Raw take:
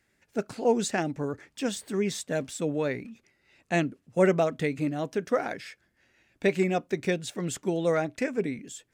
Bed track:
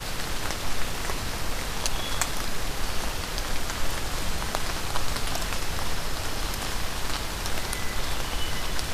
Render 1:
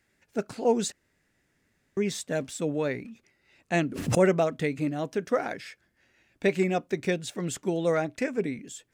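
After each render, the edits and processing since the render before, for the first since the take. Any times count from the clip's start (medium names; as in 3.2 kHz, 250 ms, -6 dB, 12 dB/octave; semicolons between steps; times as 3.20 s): 0.92–1.97 s: room tone; 3.74–4.28 s: swell ahead of each attack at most 64 dB/s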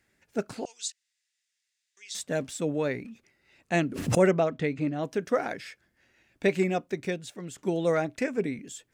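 0.65–2.15 s: Butterworth band-pass 5.5 kHz, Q 0.95; 4.31–5.03 s: distance through air 100 m; 6.56–7.58 s: fade out, to -10 dB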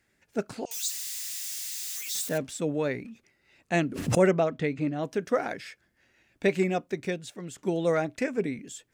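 0.71–2.38 s: zero-crossing glitches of -28.5 dBFS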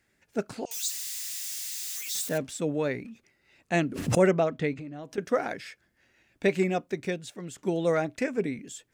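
4.73–5.18 s: compression, threshold -37 dBFS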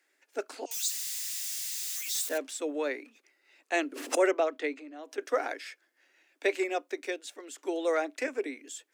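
steep high-pass 270 Hz 72 dB/octave; bass shelf 410 Hz -7 dB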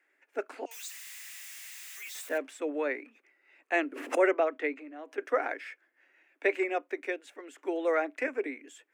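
resonant high shelf 3.1 kHz -10.5 dB, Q 1.5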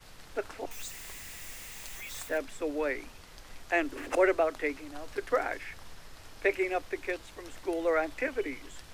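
add bed track -20.5 dB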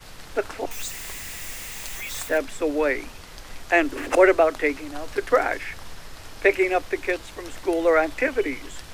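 trim +9 dB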